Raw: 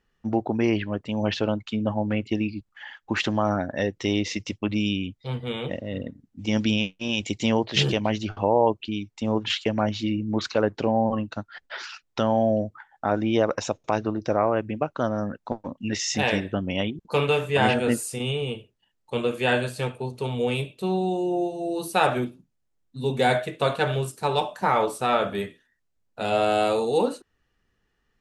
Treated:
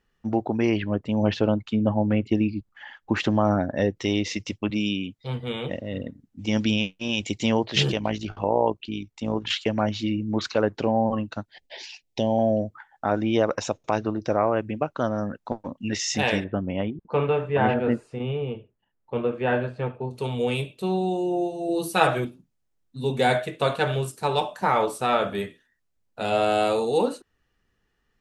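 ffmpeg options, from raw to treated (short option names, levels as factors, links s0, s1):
-filter_complex "[0:a]asettb=1/sr,asplit=3[s0][s1][s2];[s0]atrim=end=0.834[s3];[s1]atrim=start=0.83:end=3.97,asetpts=PTS-STARTPTS,afade=t=in:d=0.004:c=qsin,afade=t=out:st=3.136:d=0.004:c=qsin,tiltshelf=f=1100:g=4[s4];[s2]atrim=start=3.966[s5];[s3][s4]acrossfade=d=0.004:c1=hsin:c2=qsin[s6];[s6][s5]acrossfade=d=0.004:c1=qsin:c2=hsin,asettb=1/sr,asplit=3[s7][s8][s9];[s7]atrim=end=4.704[s10];[s8]atrim=start=4.7:end=5.19,asetpts=PTS-STARTPTS,afade=t=in:d=0.004:c=qsin,afade=t=out:st=0.486:d=0.004:c=qsin,highpass=140[s11];[s9]atrim=start=5.186[s12];[s10][s11]acrossfade=d=0.004:c1=hsin:c2=qsin[s13];[s13][s12]acrossfade=d=0.004:c1=qsin:c2=hsin,asettb=1/sr,asplit=3[s14][s15][s16];[s14]atrim=end=7.924[s17];[s15]atrim=start=7.92:end=9.51,asetpts=PTS-STARTPTS,afade=t=in:d=0.004:c=qsin,afade=t=out:st=1.586:d=0.004:c=qsin,tremolo=f=58:d=0.519[s18];[s16]atrim=start=9.506[s19];[s17][s18]acrossfade=d=0.004:c1=hsin:c2=qsin[s20];[s20][s19]acrossfade=d=0.004:c1=qsin:c2=hsin,asettb=1/sr,asplit=3[s21][s22][s23];[s21]atrim=end=11.454[s24];[s22]atrim=start=11.45:end=12.39,asetpts=PTS-STARTPTS,afade=t=in:d=0.004:c=qsin,afade=t=out:st=0.936:d=0.004:c=qsin,asuperstop=centerf=1300:order=4:qfactor=0.99[s25];[s23]atrim=start=12.386[s26];[s24][s25]acrossfade=d=0.004:c1=hsin:c2=qsin[s27];[s27][s26]acrossfade=d=0.004:c1=qsin:c2=hsin,asettb=1/sr,asplit=3[s28][s29][s30];[s28]atrim=end=16.444[s31];[s29]atrim=start=16.44:end=20.11,asetpts=PTS-STARTPTS,afade=t=in:d=0.004:c=qsin,afade=t=out:st=3.666:d=0.004:c=qsin,lowpass=1600[s32];[s30]atrim=start=20.106[s33];[s31][s32]acrossfade=d=0.004:c1=hsin:c2=qsin[s34];[s34][s33]acrossfade=d=0.004:c1=qsin:c2=hsin,asettb=1/sr,asplit=3[s35][s36][s37];[s35]atrim=end=21.684[s38];[s36]atrim=start=21.68:end=22.25,asetpts=PTS-STARTPTS,afade=t=in:d=0.004:c=qsin,afade=t=out:st=0.566:d=0.004:c=qsin,aecho=1:1:6.2:0.58,atrim=end_sample=25137[s39];[s37]atrim=start=22.246[s40];[s38][s39]acrossfade=d=0.004:c1=hsin:c2=qsin[s41];[s41][s40]acrossfade=d=0.004:c1=qsin:c2=hsin"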